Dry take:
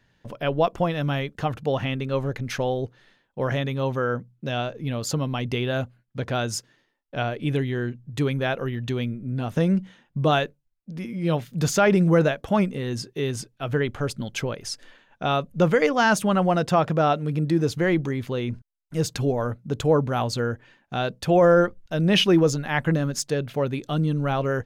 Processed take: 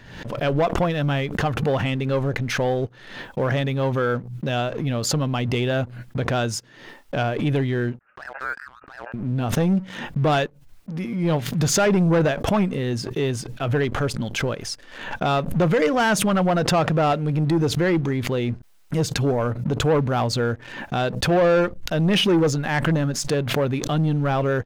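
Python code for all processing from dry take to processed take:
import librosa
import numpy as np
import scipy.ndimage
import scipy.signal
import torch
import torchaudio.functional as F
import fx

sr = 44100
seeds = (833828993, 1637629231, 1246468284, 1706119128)

y = fx.chain(x, sr, fx.ladder_highpass(hz=1300.0, resonance_pct=70),
    fx.freq_invert(carrier_hz=3000), at=(7.99, 9.14))
y = fx.leveller(y, sr, passes=2)
y = fx.high_shelf(y, sr, hz=5000.0, db=-5.0)
y = fx.pre_swell(y, sr, db_per_s=61.0)
y = F.gain(torch.from_numpy(y), -3.5).numpy()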